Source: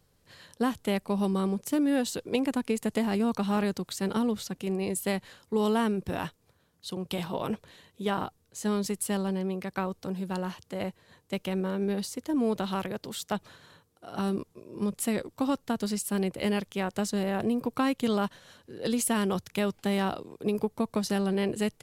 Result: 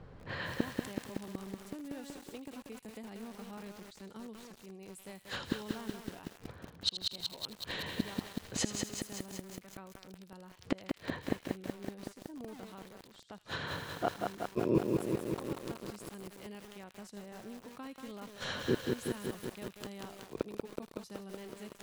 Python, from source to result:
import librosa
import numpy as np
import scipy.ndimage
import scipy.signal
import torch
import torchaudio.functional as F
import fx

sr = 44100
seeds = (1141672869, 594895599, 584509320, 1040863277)

y = fx.env_lowpass(x, sr, base_hz=1700.0, full_db=-28.5)
y = fx.gate_flip(y, sr, shuts_db=-33.0, range_db=-36)
y = fx.echo_wet_highpass(y, sr, ms=79, feedback_pct=57, hz=2400.0, wet_db=-10.0)
y = fx.echo_crushed(y, sr, ms=187, feedback_pct=80, bits=11, wet_db=-3.0)
y = F.gain(torch.from_numpy(y), 16.0).numpy()